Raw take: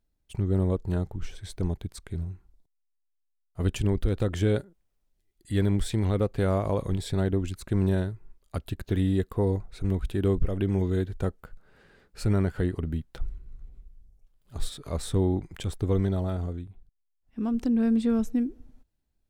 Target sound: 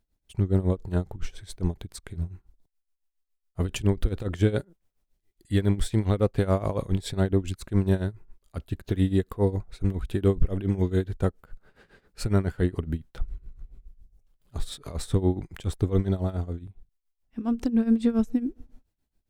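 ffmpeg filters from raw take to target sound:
-af "tremolo=f=7.2:d=0.85,volume=1.68"

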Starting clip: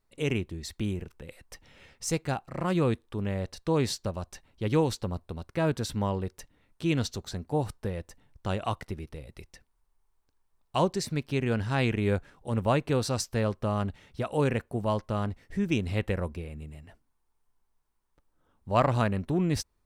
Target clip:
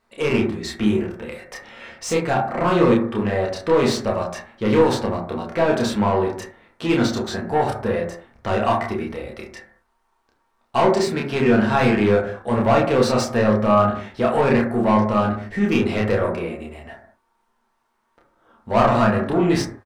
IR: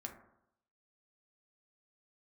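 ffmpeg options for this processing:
-filter_complex "[0:a]asplit=2[s0][s1];[s1]highpass=f=720:p=1,volume=14.1,asoftclip=type=tanh:threshold=0.316[s2];[s0][s2]amix=inputs=2:normalize=0,lowpass=f=1800:p=1,volume=0.501,asplit=2[s3][s4];[s4]adelay=29,volume=0.75[s5];[s3][s5]amix=inputs=2:normalize=0[s6];[1:a]atrim=start_sample=2205,afade=t=out:st=0.27:d=0.01,atrim=end_sample=12348[s7];[s6][s7]afir=irnorm=-1:irlink=0,volume=1.68"

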